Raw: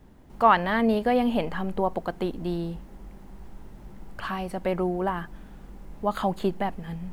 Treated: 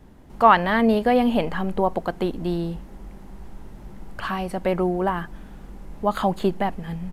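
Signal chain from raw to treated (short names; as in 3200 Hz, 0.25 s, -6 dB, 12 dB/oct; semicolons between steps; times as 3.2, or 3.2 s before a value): downsampling 32000 Hz; gain +4 dB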